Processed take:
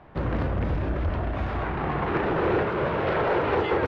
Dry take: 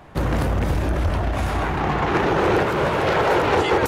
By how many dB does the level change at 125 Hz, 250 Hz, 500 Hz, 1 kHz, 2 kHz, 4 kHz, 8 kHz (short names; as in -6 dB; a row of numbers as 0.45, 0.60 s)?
-5.0 dB, -4.5 dB, -4.5 dB, -6.5 dB, -6.5 dB, -10.5 dB, under -25 dB